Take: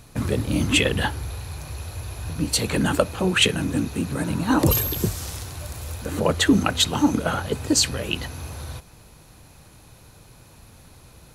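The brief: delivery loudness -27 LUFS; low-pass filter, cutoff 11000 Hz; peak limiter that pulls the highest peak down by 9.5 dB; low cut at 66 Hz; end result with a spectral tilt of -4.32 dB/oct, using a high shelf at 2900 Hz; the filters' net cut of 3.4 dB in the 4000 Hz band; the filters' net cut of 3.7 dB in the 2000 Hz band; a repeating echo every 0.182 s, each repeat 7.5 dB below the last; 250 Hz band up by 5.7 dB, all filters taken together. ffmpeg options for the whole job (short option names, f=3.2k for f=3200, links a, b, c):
-af "highpass=66,lowpass=11k,equalizer=f=250:t=o:g=7,equalizer=f=2k:t=o:g=-6,highshelf=f=2.9k:g=7.5,equalizer=f=4k:t=o:g=-8,alimiter=limit=-11dB:level=0:latency=1,aecho=1:1:182|364|546|728|910:0.422|0.177|0.0744|0.0312|0.0131,volume=-5dB"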